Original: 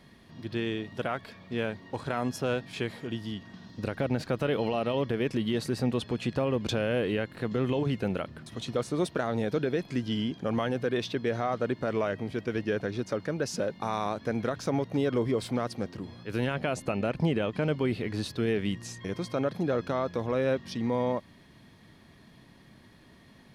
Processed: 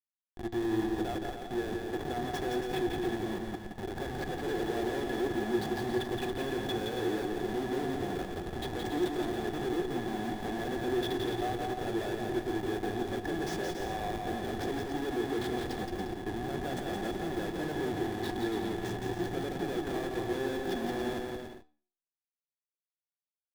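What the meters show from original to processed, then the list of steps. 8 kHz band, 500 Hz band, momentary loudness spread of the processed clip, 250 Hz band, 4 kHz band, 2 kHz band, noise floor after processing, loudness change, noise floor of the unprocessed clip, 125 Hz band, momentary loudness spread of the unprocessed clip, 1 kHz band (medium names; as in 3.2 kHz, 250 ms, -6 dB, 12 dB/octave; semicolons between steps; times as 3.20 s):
-2.5 dB, -3.5 dB, 5 LU, -2.5 dB, -2.0 dB, -2.0 dB, under -85 dBFS, -3.5 dB, -56 dBFS, -7.5 dB, 7 LU, -0.5 dB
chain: peaking EQ 1.5 kHz +3.5 dB 0.2 oct; peak limiter -27 dBFS, peak gain reduction 10 dB; Schmitt trigger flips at -38.5 dBFS; flange 0.16 Hz, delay 7.5 ms, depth 7.1 ms, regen +82%; small resonant body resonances 360/740/1700/3400 Hz, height 17 dB, ringing for 40 ms; on a send: bouncing-ball echo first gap 170 ms, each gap 0.65×, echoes 5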